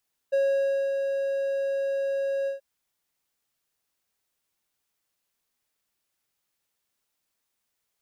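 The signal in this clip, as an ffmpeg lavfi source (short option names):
-f lavfi -i "aevalsrc='0.133*(1-4*abs(mod(549*t+0.25,1)-0.5))':d=2.281:s=44100,afade=t=in:d=0.017,afade=t=out:st=0.017:d=0.574:silence=0.562,afade=t=out:st=2.15:d=0.131"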